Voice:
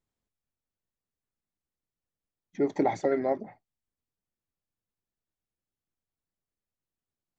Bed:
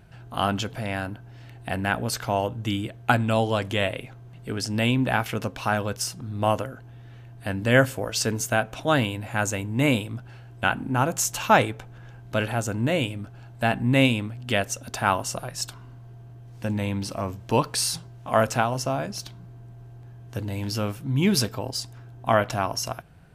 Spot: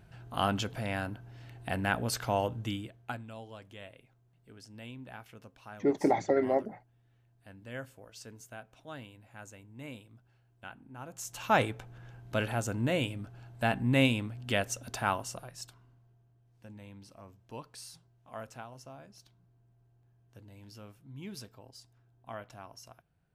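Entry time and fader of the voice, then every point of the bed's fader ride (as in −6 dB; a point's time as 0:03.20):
3.25 s, −0.5 dB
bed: 0:02.56 −5 dB
0:03.33 −23.5 dB
0:10.98 −23.5 dB
0:11.62 −6 dB
0:14.93 −6 dB
0:16.29 −22.5 dB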